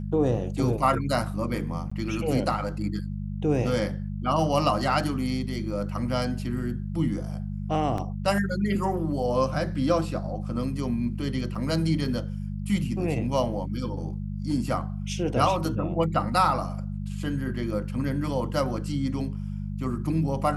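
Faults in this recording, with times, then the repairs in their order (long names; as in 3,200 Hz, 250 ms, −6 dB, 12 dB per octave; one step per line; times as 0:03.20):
mains hum 50 Hz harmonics 4 −32 dBFS
0:01.90–0:01.92: drop-out 15 ms
0:07.98: drop-out 2.8 ms
0:11.55: drop-out 4.5 ms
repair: hum removal 50 Hz, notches 4
repair the gap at 0:01.90, 15 ms
repair the gap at 0:07.98, 2.8 ms
repair the gap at 0:11.55, 4.5 ms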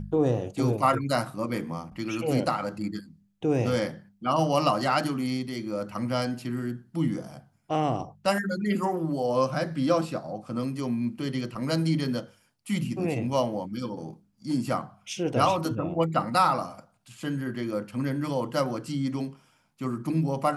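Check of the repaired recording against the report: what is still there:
none of them is left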